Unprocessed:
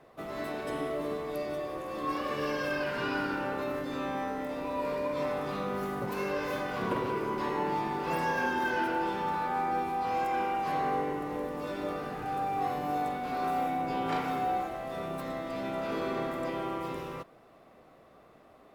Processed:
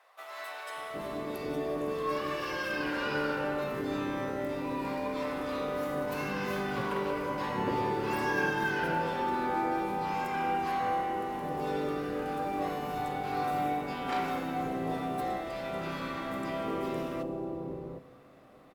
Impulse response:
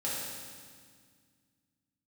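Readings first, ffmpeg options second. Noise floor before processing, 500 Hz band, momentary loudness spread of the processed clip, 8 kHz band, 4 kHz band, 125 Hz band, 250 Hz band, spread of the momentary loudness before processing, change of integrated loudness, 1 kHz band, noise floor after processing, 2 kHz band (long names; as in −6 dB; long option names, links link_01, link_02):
−57 dBFS, 0.0 dB, 6 LU, +1.0 dB, +1.0 dB, +1.5 dB, +1.0 dB, 6 LU, −0.5 dB, −1.0 dB, −48 dBFS, +1.0 dB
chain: -filter_complex "[0:a]acrossover=split=720[link_01][link_02];[link_01]adelay=760[link_03];[link_03][link_02]amix=inputs=2:normalize=0,asplit=2[link_04][link_05];[1:a]atrim=start_sample=2205[link_06];[link_05][link_06]afir=irnorm=-1:irlink=0,volume=-16dB[link_07];[link_04][link_07]amix=inputs=2:normalize=0"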